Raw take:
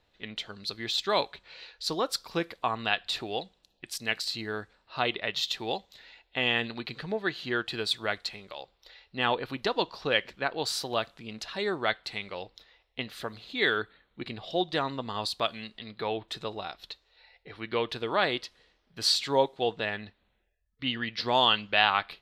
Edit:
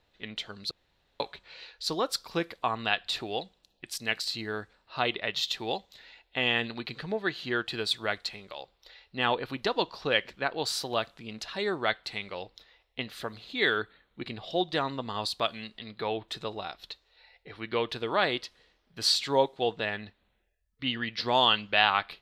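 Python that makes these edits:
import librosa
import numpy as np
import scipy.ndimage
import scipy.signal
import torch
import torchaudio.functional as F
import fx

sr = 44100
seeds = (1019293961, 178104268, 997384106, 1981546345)

y = fx.edit(x, sr, fx.room_tone_fill(start_s=0.71, length_s=0.49), tone=tone)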